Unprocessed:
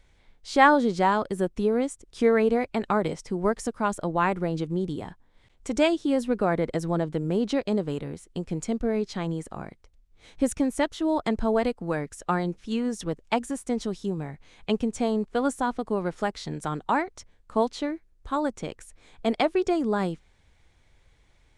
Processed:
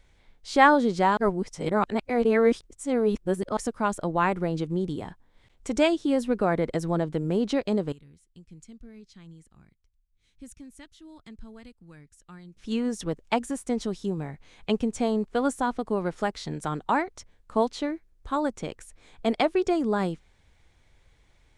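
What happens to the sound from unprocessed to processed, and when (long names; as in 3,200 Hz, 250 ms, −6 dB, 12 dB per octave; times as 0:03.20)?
0:01.17–0:03.57: reverse
0:07.92–0:12.57: guitar amp tone stack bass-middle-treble 6-0-2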